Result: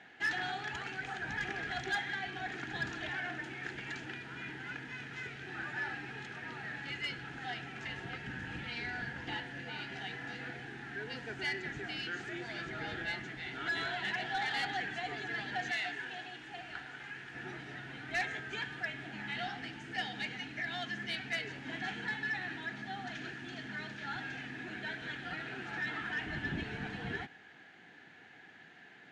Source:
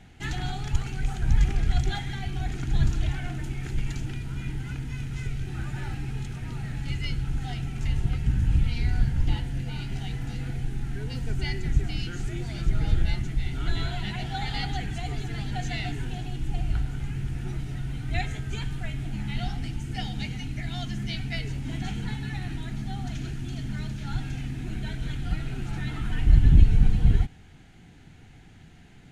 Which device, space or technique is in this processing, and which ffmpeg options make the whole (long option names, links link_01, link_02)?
intercom: -filter_complex "[0:a]highpass=400,lowpass=3800,equalizer=frequency=1700:width_type=o:width=0.23:gain=12,asoftclip=type=tanh:threshold=-27dB,asettb=1/sr,asplit=3[link_01][link_02][link_03];[link_01]atrim=end=15.714[link_04];[link_02]atrim=start=15.71:end=17.34,asetpts=PTS-STARTPTS,afade=type=in:duration=0.004:curve=qsin,afade=type=out:start_time=1.626:duration=0.004:curve=qsin,lowshelf=frequency=450:gain=-9.5[link_05];[link_03]atrim=start=17.336[link_06];[link_04][link_05]acrossfade=duration=0.004:curve1=hsin:curve2=qsin[link_07];[link_07][link_06]acrossfade=duration=0.004:curve1=qsin:curve2=hsin"